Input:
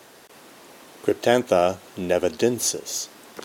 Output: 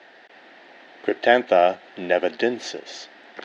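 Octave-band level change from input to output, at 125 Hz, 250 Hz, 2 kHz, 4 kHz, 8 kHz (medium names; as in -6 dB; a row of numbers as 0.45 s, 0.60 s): under -10 dB, -2.0 dB, +7.0 dB, -1.0 dB, under -15 dB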